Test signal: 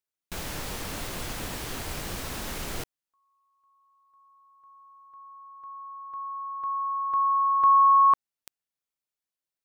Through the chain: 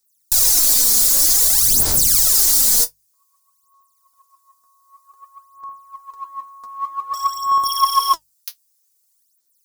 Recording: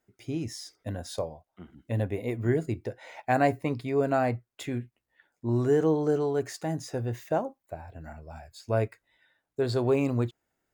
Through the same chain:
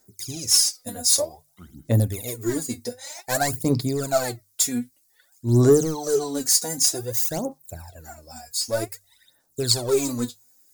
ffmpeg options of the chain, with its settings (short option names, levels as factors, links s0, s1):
-filter_complex "[0:a]bandreject=f=50:t=h:w=6,bandreject=f=100:t=h:w=6,bandreject=f=150:t=h:w=6,asplit=2[s0][s1];[s1]aeval=exprs='0.0841*(abs(mod(val(0)/0.0841+3,4)-2)-1)':c=same,volume=0.335[s2];[s0][s2]amix=inputs=2:normalize=0,aexciter=amount=13.8:drive=4.7:freq=4200,aeval=exprs='(mod(0.944*val(0)+1,2)-1)/0.944':c=same,aphaser=in_gain=1:out_gain=1:delay=4.2:decay=0.77:speed=0.53:type=sinusoidal,volume=0.631"